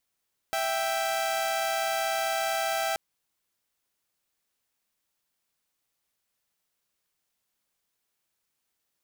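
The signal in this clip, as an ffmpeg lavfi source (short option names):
-f lavfi -i "aevalsrc='0.0473*((2*mod(659.26*t,1)-1)+(2*mod(783.99*t,1)-1))':d=2.43:s=44100"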